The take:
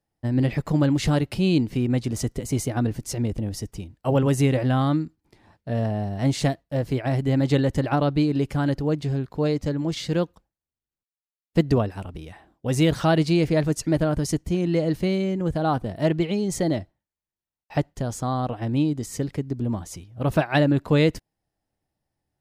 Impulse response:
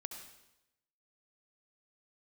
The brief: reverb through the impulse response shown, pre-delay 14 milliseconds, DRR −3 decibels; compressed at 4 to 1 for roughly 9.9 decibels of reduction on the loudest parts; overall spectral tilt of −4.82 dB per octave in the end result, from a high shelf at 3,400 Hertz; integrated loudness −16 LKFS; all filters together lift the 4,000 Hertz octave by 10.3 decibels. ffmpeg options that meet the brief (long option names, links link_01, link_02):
-filter_complex "[0:a]highshelf=frequency=3400:gain=7,equalizer=frequency=4000:width_type=o:gain=8,acompressor=threshold=-25dB:ratio=4,asplit=2[link_01][link_02];[1:a]atrim=start_sample=2205,adelay=14[link_03];[link_02][link_03]afir=irnorm=-1:irlink=0,volume=5.5dB[link_04];[link_01][link_04]amix=inputs=2:normalize=0,volume=8dB"